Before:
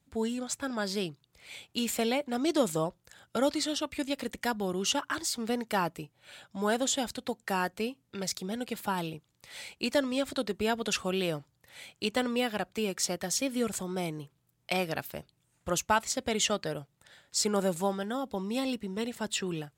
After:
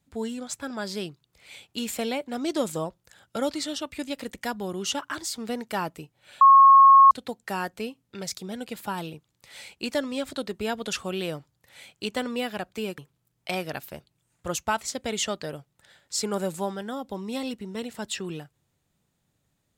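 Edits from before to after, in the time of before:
6.41–7.11 s: bleep 1.09 kHz -9.5 dBFS
12.98–14.20 s: delete

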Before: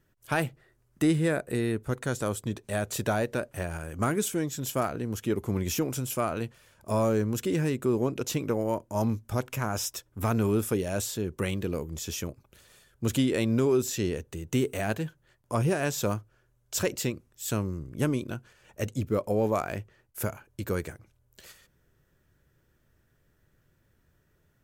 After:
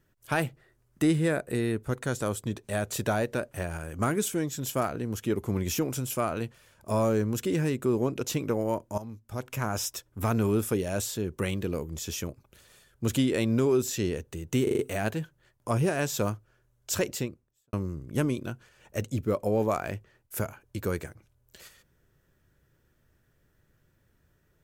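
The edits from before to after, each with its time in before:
8.98–9.60 s: fade in quadratic, from -15 dB
14.63 s: stutter 0.04 s, 5 plays
16.87–17.57 s: studio fade out

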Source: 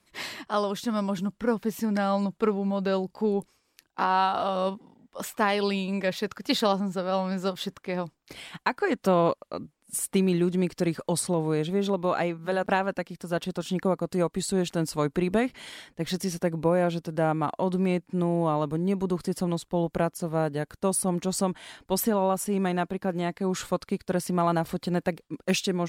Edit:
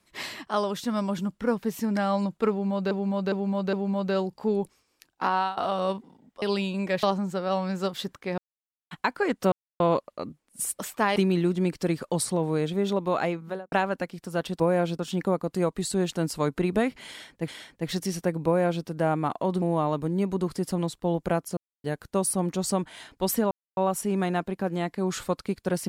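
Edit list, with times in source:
2.50–2.91 s: loop, 4 plays
4.00–4.34 s: fade out equal-power, to -14.5 dB
5.19–5.56 s: move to 10.13 s
6.17–6.65 s: delete
8.00–8.53 s: mute
9.14 s: insert silence 0.28 s
12.36–12.69 s: studio fade out
15.66–16.06 s: loop, 2 plays
16.64–17.03 s: copy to 13.57 s
17.80–18.31 s: delete
20.26–20.53 s: mute
22.20 s: insert silence 0.26 s

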